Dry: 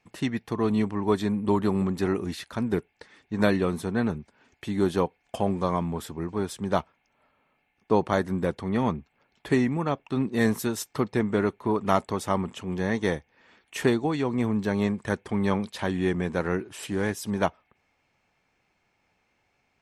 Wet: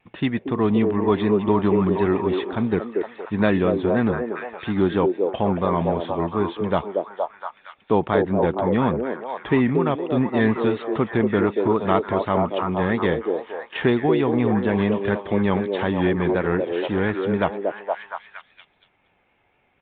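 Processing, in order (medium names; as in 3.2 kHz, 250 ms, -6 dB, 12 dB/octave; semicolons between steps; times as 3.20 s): vibrato 4.1 Hz 53 cents; repeats whose band climbs or falls 233 ms, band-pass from 440 Hz, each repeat 0.7 oct, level -0.5 dB; in parallel at -2 dB: peak limiter -16 dBFS, peak gain reduction 10 dB; on the sum: resampled via 8 kHz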